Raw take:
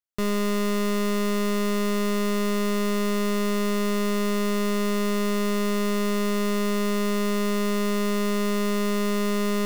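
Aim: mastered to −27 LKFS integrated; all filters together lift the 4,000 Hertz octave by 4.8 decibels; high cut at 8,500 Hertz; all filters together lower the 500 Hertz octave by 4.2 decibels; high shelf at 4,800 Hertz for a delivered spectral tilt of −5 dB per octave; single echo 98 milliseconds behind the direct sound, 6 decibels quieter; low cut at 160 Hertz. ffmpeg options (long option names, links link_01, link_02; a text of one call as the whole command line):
ffmpeg -i in.wav -af "highpass=160,lowpass=8500,equalizer=frequency=500:width_type=o:gain=-5.5,equalizer=frequency=4000:width_type=o:gain=9,highshelf=frequency=4800:gain=-5.5,aecho=1:1:98:0.501,volume=-2.5dB" out.wav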